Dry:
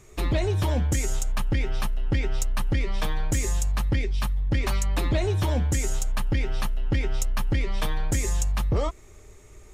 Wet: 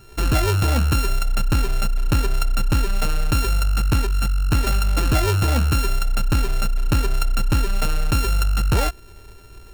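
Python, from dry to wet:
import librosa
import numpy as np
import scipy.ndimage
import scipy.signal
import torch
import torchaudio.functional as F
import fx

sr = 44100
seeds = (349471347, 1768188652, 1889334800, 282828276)

y = np.r_[np.sort(x[:len(x) // 32 * 32].reshape(-1, 32), axis=1).ravel(), x[len(x) // 32 * 32:]]
y = fx.peak_eq(y, sr, hz=1100.0, db=-5.5, octaves=0.38)
y = y * librosa.db_to_amplitude(5.5)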